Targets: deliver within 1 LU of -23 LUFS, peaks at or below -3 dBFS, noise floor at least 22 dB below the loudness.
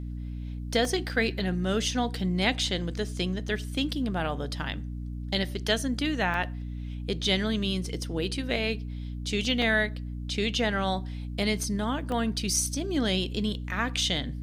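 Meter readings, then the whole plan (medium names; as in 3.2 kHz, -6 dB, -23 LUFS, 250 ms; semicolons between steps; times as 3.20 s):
dropouts 4; longest dropout 1.6 ms; hum 60 Hz; highest harmonic 300 Hz; hum level -33 dBFS; loudness -28.5 LUFS; peak level -11.5 dBFS; loudness target -23.0 LUFS
-> interpolate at 0.85/6.34/9.62/12.12 s, 1.6 ms; de-hum 60 Hz, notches 5; trim +5.5 dB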